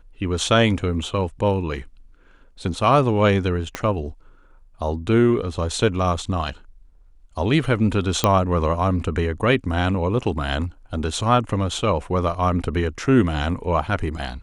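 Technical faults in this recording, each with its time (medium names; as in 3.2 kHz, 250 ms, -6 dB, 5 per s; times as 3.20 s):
3.75 s: pop -10 dBFS
8.24 s: pop -3 dBFS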